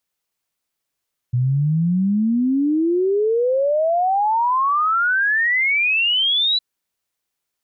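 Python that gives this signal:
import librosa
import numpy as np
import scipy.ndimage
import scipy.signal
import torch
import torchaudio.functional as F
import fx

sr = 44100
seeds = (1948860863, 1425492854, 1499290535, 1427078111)

y = fx.ess(sr, length_s=5.26, from_hz=120.0, to_hz=4000.0, level_db=-15.0)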